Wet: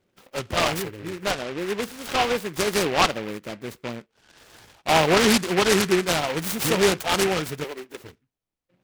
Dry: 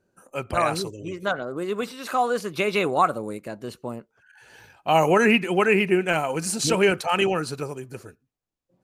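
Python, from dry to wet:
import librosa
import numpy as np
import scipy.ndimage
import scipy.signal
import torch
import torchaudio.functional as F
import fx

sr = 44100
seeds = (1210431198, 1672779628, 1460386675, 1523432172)

y = fx.highpass(x, sr, hz=270.0, slope=24, at=(7.64, 8.04))
y = fx.noise_mod_delay(y, sr, seeds[0], noise_hz=1700.0, depth_ms=0.14)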